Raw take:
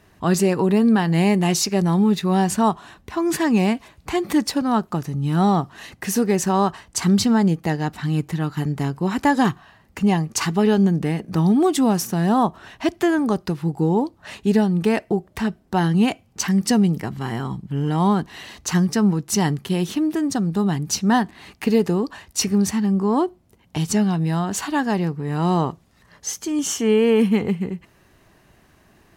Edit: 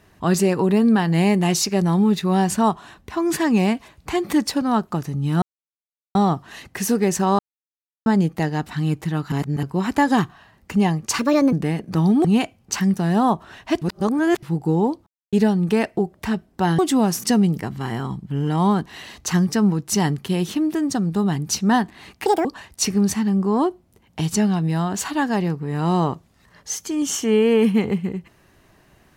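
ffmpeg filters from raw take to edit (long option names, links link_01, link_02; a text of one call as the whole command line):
ffmpeg -i in.wav -filter_complex "[0:a]asplit=18[link_01][link_02][link_03][link_04][link_05][link_06][link_07][link_08][link_09][link_10][link_11][link_12][link_13][link_14][link_15][link_16][link_17][link_18];[link_01]atrim=end=5.42,asetpts=PTS-STARTPTS,afade=type=out:start_time=5.416:duration=0.004:curve=hsin,apad=pad_dur=0.73[link_19];[link_02]atrim=start=5.42:end=6.66,asetpts=PTS-STARTPTS,afade=type=in:duration=0.004:curve=hsin,afade=type=out:start_time=1.236:duration=0.004:curve=hsin[link_20];[link_03]atrim=start=6.66:end=7.33,asetpts=PTS-STARTPTS,volume=0[link_21];[link_04]atrim=start=7.33:end=8.592,asetpts=PTS-STARTPTS,afade=type=in:duration=0.004:curve=hsin[link_22];[link_05]atrim=start=8.588:end=8.902,asetpts=PTS-STARTPTS,areverse[link_23];[link_06]atrim=start=8.898:end=10.464[link_24];[link_07]atrim=start=10.46:end=10.93,asetpts=PTS-STARTPTS,asetrate=61740,aresample=44100,atrim=end_sample=14805,asetpts=PTS-STARTPTS[link_25];[link_08]atrim=start=10.926:end=11.652[link_26];[link_09]atrim=start=15.918:end=16.642[link_27];[link_10]atrim=start=12.098:end=12.952[link_28];[link_11]atrim=start=12.948:end=13.562,asetpts=PTS-STARTPTS,areverse[link_29];[link_12]atrim=start=13.558:end=14.2,asetpts=PTS-STARTPTS,afade=type=out:start_time=0.638:duration=0.004:curve=hsin[link_30];[link_13]atrim=start=14.2:end=14.46,asetpts=PTS-STARTPTS,volume=0[link_31];[link_14]atrim=start=14.46:end=15.922,asetpts=PTS-STARTPTS,afade=type=in:duration=0.004:curve=hsin[link_32];[link_15]atrim=start=11.648:end=12.102[link_33];[link_16]atrim=start=16.638:end=21.664[link_34];[link_17]atrim=start=21.66:end=22.02,asetpts=PTS-STARTPTS,asetrate=81585,aresample=44100[link_35];[link_18]atrim=start=22.016[link_36];[link_19][link_20][link_21][link_22]concat=n=4:v=0:a=1[link_37];[link_37][link_23]acrossfade=duration=0.004:curve1=hsin:curve2=hsin[link_38];[link_38][link_24]acrossfade=duration=0.004:curve1=hsin:curve2=hsin[link_39];[link_39][link_25]acrossfade=duration=0.004:curve1=hsin:curve2=hsin[link_40];[link_40][link_26]acrossfade=duration=0.004:curve1=hsin:curve2=hsin[link_41];[link_41][link_27]acrossfade=duration=0.004:curve1=hsin:curve2=hsin[link_42];[link_42][link_28]acrossfade=duration=0.004:curve1=hsin:curve2=hsin[link_43];[link_43][link_29]acrossfade=duration=0.004:curve1=hsin:curve2=hsin[link_44];[link_30][link_31][link_32]concat=n=3:v=0:a=1[link_45];[link_44][link_45]acrossfade=duration=0.004:curve1=hsin:curve2=hsin[link_46];[link_46][link_33]acrossfade=duration=0.004:curve1=hsin:curve2=hsin[link_47];[link_47][link_34]acrossfade=duration=0.004:curve1=hsin:curve2=hsin[link_48];[link_48][link_35]acrossfade=duration=0.004:curve1=hsin:curve2=hsin[link_49];[link_49][link_36]acrossfade=duration=0.004:curve1=hsin:curve2=hsin" out.wav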